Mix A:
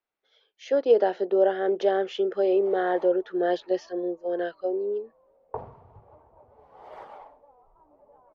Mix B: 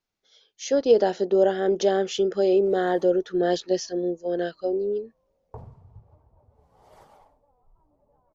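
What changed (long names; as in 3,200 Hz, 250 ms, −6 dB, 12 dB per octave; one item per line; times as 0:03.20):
background −10.5 dB
master: remove three-way crossover with the lows and the highs turned down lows −16 dB, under 310 Hz, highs −23 dB, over 3,200 Hz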